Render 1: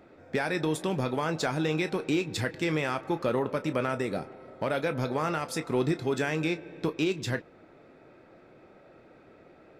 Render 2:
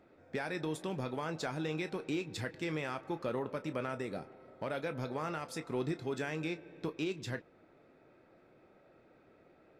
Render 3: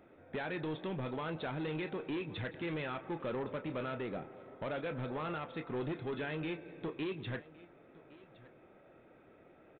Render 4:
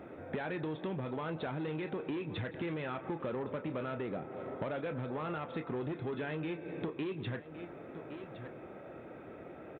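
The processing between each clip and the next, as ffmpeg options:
ffmpeg -i in.wav -af "highshelf=frequency=11000:gain=-4,volume=-8.5dB" out.wav
ffmpeg -i in.wav -af "aresample=8000,asoftclip=type=tanh:threshold=-35.5dB,aresample=44100,aecho=1:1:1114:0.0944,volume=2.5dB" out.wav
ffmpeg -i in.wav -af "highpass=51,highshelf=frequency=2800:gain=-8.5,acompressor=threshold=-49dB:ratio=5,volume=12.5dB" out.wav

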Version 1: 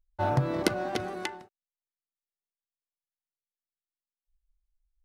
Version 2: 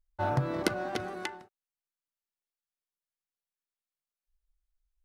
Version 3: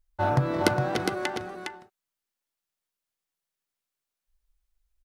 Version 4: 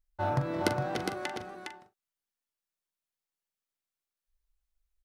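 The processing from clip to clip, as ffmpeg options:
ffmpeg -i in.wav -af "equalizer=frequency=1400:width_type=o:width=0.77:gain=3,volume=-3dB" out.wav
ffmpeg -i in.wav -af "aecho=1:1:410:0.562,volume=5dB" out.wav
ffmpeg -i in.wav -filter_complex "[0:a]asplit=2[link_01][link_02];[link_02]adelay=42,volume=-11dB[link_03];[link_01][link_03]amix=inputs=2:normalize=0,volume=-6dB" out.wav

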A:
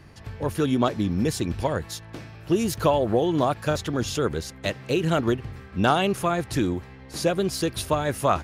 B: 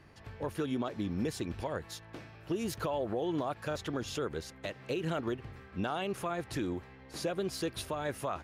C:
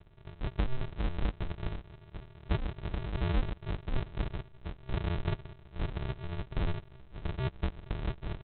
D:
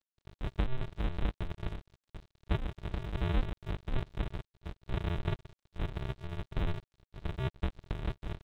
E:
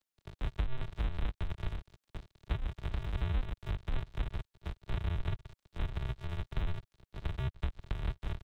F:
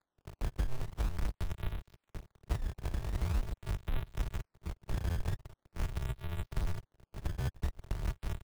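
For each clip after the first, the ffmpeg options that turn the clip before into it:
ffmpeg -i in.wav -af "bass=frequency=250:gain=-5,treble=frequency=4000:gain=-5,alimiter=limit=-18.5dB:level=0:latency=1:release=148,volume=-6dB" out.wav
ffmpeg -i in.wav -af "equalizer=frequency=290:width=3.4:gain=11.5,aresample=8000,acrusher=samples=31:mix=1:aa=0.000001,aresample=44100,volume=-1.5dB" out.wav
ffmpeg -i in.wav -af "aeval=exprs='sgn(val(0))*max(abs(val(0))-0.00422,0)':channel_layout=same" out.wav
ffmpeg -i in.wav -filter_complex "[0:a]acrossover=split=120|710[link_01][link_02][link_03];[link_01]acompressor=threshold=-33dB:ratio=4[link_04];[link_02]acompressor=threshold=-52dB:ratio=4[link_05];[link_03]acompressor=threshold=-49dB:ratio=4[link_06];[link_04][link_05][link_06]amix=inputs=3:normalize=0,volume=4dB" out.wav
ffmpeg -i in.wav -af "acrusher=samples=15:mix=1:aa=0.000001:lfo=1:lforange=24:lforate=0.44" out.wav

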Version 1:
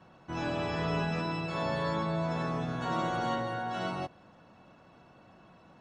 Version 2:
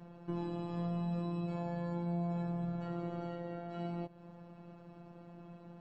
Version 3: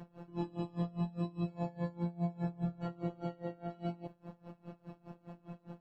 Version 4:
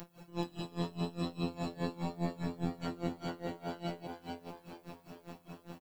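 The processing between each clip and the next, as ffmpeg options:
ffmpeg -i in.wav -af "acompressor=threshold=-42dB:ratio=4,tiltshelf=frequency=770:gain=7,afftfilt=real='hypot(re,im)*cos(PI*b)':imag='0':win_size=1024:overlap=0.75,volume=3.5dB" out.wav
ffmpeg -i in.wav -filter_complex "[0:a]asplit=2[link_01][link_02];[link_02]asoftclip=type=tanh:threshold=-35dB,volume=-3dB[link_03];[link_01][link_03]amix=inputs=2:normalize=0,aeval=exprs='val(0)*pow(10,-24*(0.5-0.5*cos(2*PI*4.9*n/s))/20)':channel_layout=same,volume=2dB" out.wav
ffmpeg -i in.wav -filter_complex "[0:a]asplit=5[link_01][link_02][link_03][link_04][link_05];[link_02]adelay=432,afreqshift=85,volume=-5dB[link_06];[link_03]adelay=864,afreqshift=170,volume=-14.9dB[link_07];[link_04]adelay=1296,afreqshift=255,volume=-24.8dB[link_08];[link_05]adelay=1728,afreqshift=340,volume=-34.7dB[link_09];[link_01][link_06][link_07][link_08][link_09]amix=inputs=5:normalize=0,tremolo=f=170:d=0.71,crystalizer=i=7.5:c=0,volume=1.5dB" out.wav

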